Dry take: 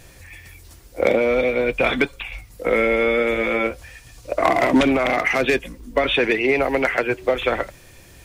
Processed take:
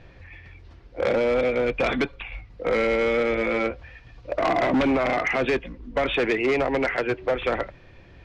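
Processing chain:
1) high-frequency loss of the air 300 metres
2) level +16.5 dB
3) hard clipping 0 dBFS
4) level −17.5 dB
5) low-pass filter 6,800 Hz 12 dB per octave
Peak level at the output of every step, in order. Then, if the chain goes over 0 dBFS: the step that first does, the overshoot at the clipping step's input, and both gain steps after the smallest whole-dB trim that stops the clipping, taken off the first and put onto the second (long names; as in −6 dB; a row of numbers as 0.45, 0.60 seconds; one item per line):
−6.5, +10.0, 0.0, −17.5, −17.0 dBFS
step 2, 10.0 dB
step 2 +6.5 dB, step 4 −7.5 dB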